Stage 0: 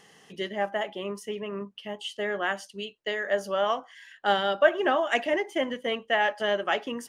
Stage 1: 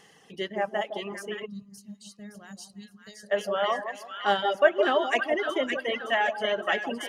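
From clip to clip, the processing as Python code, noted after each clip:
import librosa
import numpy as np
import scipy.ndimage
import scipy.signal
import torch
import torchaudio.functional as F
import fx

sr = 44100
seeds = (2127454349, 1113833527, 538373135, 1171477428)

y = fx.echo_split(x, sr, split_hz=1100.0, low_ms=161, high_ms=566, feedback_pct=52, wet_db=-4.0)
y = fx.spec_box(y, sr, start_s=1.46, length_s=1.85, low_hz=240.0, high_hz=3700.0, gain_db=-21)
y = fx.dereverb_blind(y, sr, rt60_s=1.7)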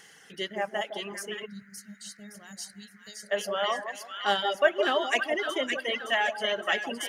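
y = fx.high_shelf(x, sr, hz=2700.0, db=11.0)
y = fx.dmg_noise_band(y, sr, seeds[0], low_hz=1400.0, high_hz=2100.0, level_db=-56.0)
y = F.gain(torch.from_numpy(y), -3.5).numpy()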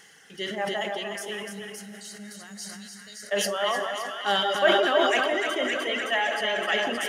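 y = x + 10.0 ** (-6.5 / 20.0) * np.pad(x, (int(299 * sr / 1000.0), 0))[:len(x)]
y = fx.rev_plate(y, sr, seeds[1], rt60_s=3.2, hf_ratio=0.95, predelay_ms=0, drr_db=10.0)
y = fx.sustainer(y, sr, db_per_s=30.0)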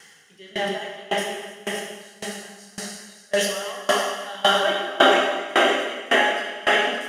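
y = fx.rev_plate(x, sr, seeds[2], rt60_s=5.0, hf_ratio=1.0, predelay_ms=0, drr_db=-6.5)
y = fx.tremolo_decay(y, sr, direction='decaying', hz=1.8, depth_db=23)
y = F.gain(torch.from_numpy(y), 4.0).numpy()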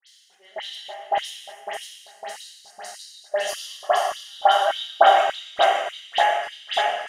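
y = fx.filter_lfo_highpass(x, sr, shape='square', hz=1.7, low_hz=740.0, high_hz=3800.0, q=5.0)
y = fx.dispersion(y, sr, late='highs', ms=75.0, hz=2700.0)
y = F.gain(torch.from_numpy(y), -6.0).numpy()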